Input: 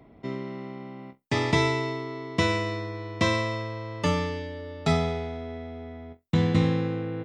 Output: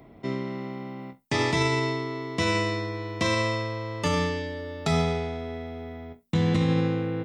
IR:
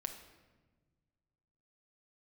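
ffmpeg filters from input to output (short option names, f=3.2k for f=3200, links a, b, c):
-filter_complex "[0:a]highshelf=f=6.3k:g=4.5,bandreject=f=60:t=h:w=6,bandreject=f=120:t=h:w=6,bandreject=f=180:t=h:w=6,bandreject=f=240:t=h:w=6,asplit=2[a][b];[1:a]atrim=start_sample=2205,atrim=end_sample=3528,highshelf=f=6.5k:g=9.5[c];[b][c]afir=irnorm=-1:irlink=0,volume=-5.5dB[d];[a][d]amix=inputs=2:normalize=0,alimiter=limit=-15dB:level=0:latency=1:release=33"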